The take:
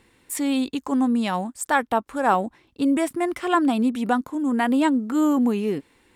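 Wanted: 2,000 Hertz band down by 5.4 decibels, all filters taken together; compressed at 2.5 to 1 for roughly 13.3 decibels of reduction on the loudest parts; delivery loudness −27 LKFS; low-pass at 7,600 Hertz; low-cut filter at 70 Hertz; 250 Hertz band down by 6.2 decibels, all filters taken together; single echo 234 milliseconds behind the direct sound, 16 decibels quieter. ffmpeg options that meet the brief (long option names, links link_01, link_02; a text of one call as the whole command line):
ffmpeg -i in.wav -af "highpass=70,lowpass=7600,equalizer=frequency=250:width_type=o:gain=-7,equalizer=frequency=2000:width_type=o:gain=-7,acompressor=threshold=-38dB:ratio=2.5,aecho=1:1:234:0.158,volume=10dB" out.wav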